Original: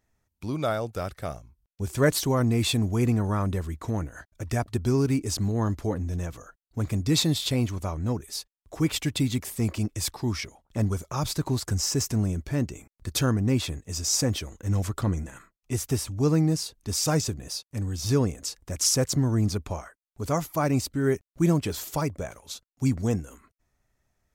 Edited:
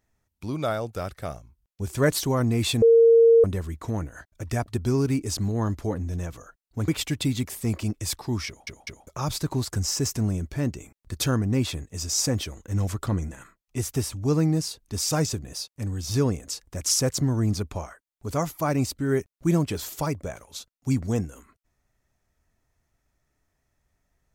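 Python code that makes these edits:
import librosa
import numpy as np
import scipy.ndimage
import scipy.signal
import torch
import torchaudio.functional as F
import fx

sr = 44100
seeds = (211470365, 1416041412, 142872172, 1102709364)

y = fx.edit(x, sr, fx.bleep(start_s=2.82, length_s=0.62, hz=460.0, db=-11.5),
    fx.cut(start_s=6.88, length_s=1.95),
    fx.stutter_over(start_s=10.42, slice_s=0.2, count=3), tone=tone)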